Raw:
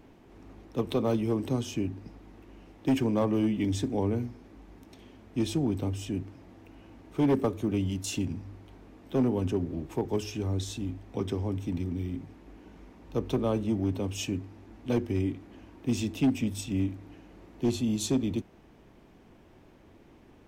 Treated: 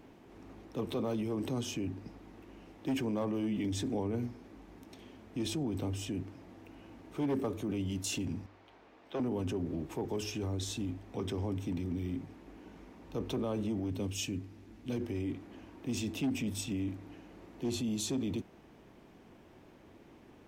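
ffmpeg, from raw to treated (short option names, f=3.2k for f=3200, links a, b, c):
-filter_complex "[0:a]asettb=1/sr,asplit=3[a][b][c];[a]atrim=end=8.464[d];[b]atrim=start=8.46:end=9.2,asetpts=PTS-STARTPTS,afade=t=in:d=0.004:c=qsin,afade=t=out:st=0.736:d=0.004:c=qsin,acrossover=split=450 5400:gain=0.2 1 0.2[e][f][g];[e][f][g]amix=inputs=3:normalize=0[h];[c]atrim=start=9.196[i];[d][h]acrossfade=d=0.004:c1=hsin:c2=qsin[j];[j][i]acrossfade=d=0.004:c1=qsin:c2=hsin,asettb=1/sr,asplit=3[k][l][m];[k]atrim=end=13.904[n];[l]atrim=start=13.9:end=15.01,asetpts=PTS-STARTPTS,afade=t=in:d=0.004:c=qsin,afade=t=out:st=1.106:d=0.004:c=qsin,equalizer=f=850:t=o:w=2.3:g=-7.5[o];[m]atrim=start=15.006[p];[n][o]acrossfade=d=0.004:c1=hsin:c2=qsin[q];[q][p]acrossfade=d=0.004:c1=qsin:c2=hsin,alimiter=level_in=2.5dB:limit=-24dB:level=0:latency=1:release=12,volume=-2.5dB,lowshelf=f=70:g=-9.5"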